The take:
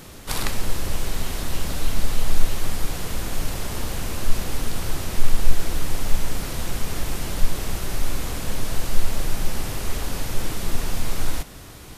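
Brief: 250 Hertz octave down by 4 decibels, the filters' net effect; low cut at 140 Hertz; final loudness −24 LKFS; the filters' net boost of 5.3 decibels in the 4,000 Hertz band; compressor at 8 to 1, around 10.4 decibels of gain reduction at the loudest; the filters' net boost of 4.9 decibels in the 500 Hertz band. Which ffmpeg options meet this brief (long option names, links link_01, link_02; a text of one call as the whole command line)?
ffmpeg -i in.wav -af "highpass=140,equalizer=frequency=250:width_type=o:gain=-7.5,equalizer=frequency=500:width_type=o:gain=8,equalizer=frequency=4000:width_type=o:gain=6.5,acompressor=threshold=-33dB:ratio=8,volume=11dB" out.wav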